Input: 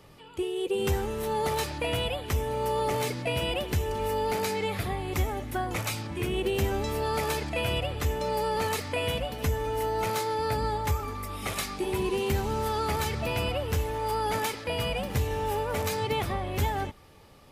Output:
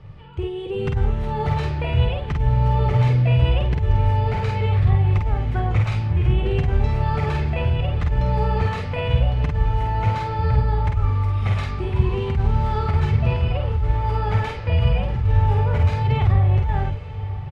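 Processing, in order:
low-pass filter 2,700 Hz 12 dB per octave
low shelf with overshoot 170 Hz +14 dB, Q 1.5
compressor whose output falls as the input rises −18 dBFS, ratio −1
double-tracking delay 49 ms −3.5 dB
feedback delay with all-pass diffusion 1,039 ms, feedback 42%, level −14.5 dB

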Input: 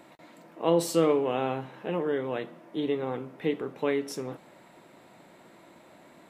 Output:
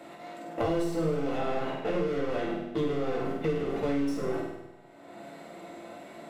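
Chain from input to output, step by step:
one-sided soft clipper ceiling −20.5 dBFS
noise gate −42 dBFS, range −34 dB
parametric band 1,500 Hz −8.5 dB 2.9 octaves
mid-hump overdrive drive 21 dB, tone 2,300 Hz, clips at −34.5 dBFS
flutter between parallel walls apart 8.5 metres, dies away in 0.63 s
convolution reverb RT60 0.35 s, pre-delay 4 ms, DRR −0.5 dB
multiband upward and downward compressor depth 100%

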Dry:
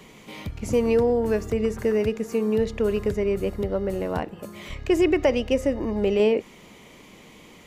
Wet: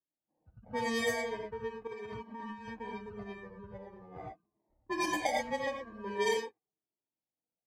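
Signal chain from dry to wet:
spectral dynamics exaggerated over time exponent 2
decimation without filtering 32×
high-pass filter 410 Hz 6 dB per octave
parametric band 3,600 Hz −4.5 dB 0.42 octaves
reverb whose tail is shaped and stops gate 130 ms rising, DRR −1 dB
noise gate −43 dBFS, range −12 dB
low-pass that shuts in the quiet parts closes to 570 Hz, open at −15.5 dBFS
0:01.87–0:02.68: compressor whose output falls as the input rises −33 dBFS, ratio −1
flanger whose copies keep moving one way falling 0.43 Hz
level −4.5 dB

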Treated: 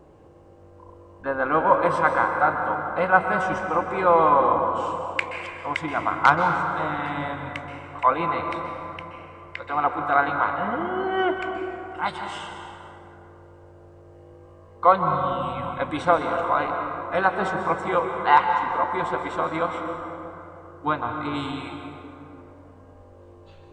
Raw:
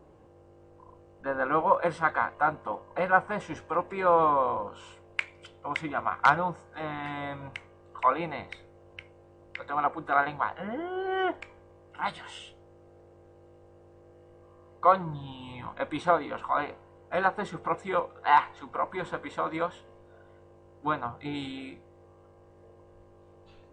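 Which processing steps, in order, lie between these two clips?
dense smooth reverb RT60 3.1 s, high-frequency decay 0.45×, pre-delay 115 ms, DRR 4 dB
level +4.5 dB

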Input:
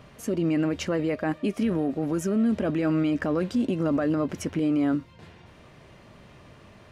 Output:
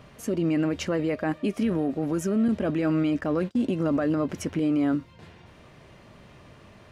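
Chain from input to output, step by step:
0:02.48–0:03.65: noise gate −28 dBFS, range −33 dB

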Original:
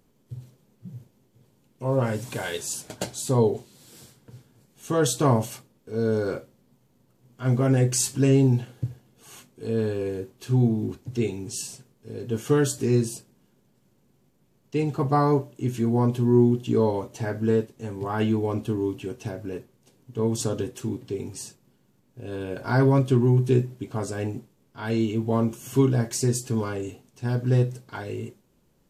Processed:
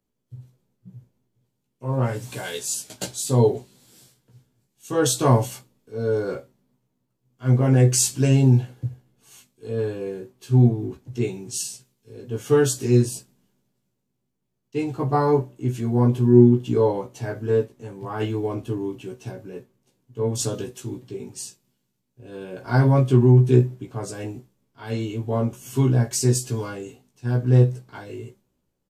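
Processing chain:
double-tracking delay 16 ms −3 dB
multiband upward and downward expander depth 40%
level −1 dB

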